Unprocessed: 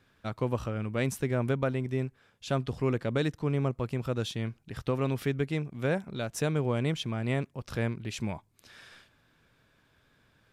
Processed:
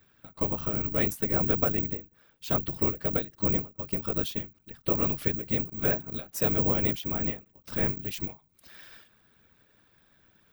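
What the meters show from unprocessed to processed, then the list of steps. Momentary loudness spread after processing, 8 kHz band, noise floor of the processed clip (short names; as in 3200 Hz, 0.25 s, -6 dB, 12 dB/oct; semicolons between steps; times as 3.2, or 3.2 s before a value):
11 LU, -1.0 dB, -66 dBFS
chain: whisperiser; careless resampling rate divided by 2×, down none, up zero stuff; ending taper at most 200 dB/s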